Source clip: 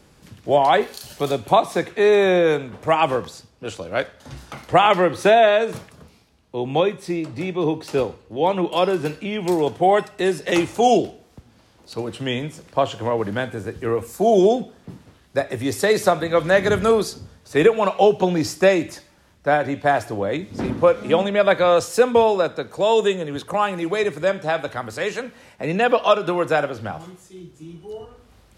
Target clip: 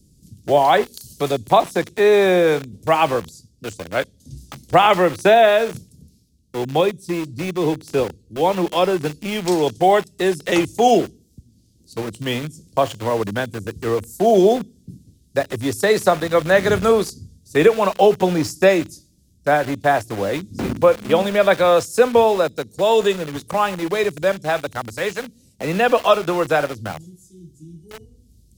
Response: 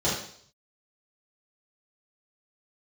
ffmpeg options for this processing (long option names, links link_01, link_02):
-filter_complex "[0:a]asettb=1/sr,asplit=3[link_01][link_02][link_03];[link_01]atrim=end=9.284[link_04];[link_02]atrim=start=9.28:end=9.97,asetpts=PTS-STARTPTS,afade=type=in:duration=0.004:curve=qsin,afade=type=out:start_time=0.686:duration=0.004:curve=qsin,equalizer=frequency=5400:width=0.83:gain=8[link_05];[link_03]atrim=start=9.966[link_06];[link_04][link_05]acrossfade=duration=0.004:curve1=hsin:curve2=qsin[link_07];[link_07][link_06]acrossfade=duration=0.004:curve1=qsin:curve2=hsin,acrossover=split=310|4900[link_08][link_09][link_10];[link_09]aeval=exprs='val(0)*gte(abs(val(0)),0.0316)':channel_layout=same[link_11];[link_08][link_11][link_10]amix=inputs=3:normalize=0,volume=1.5dB"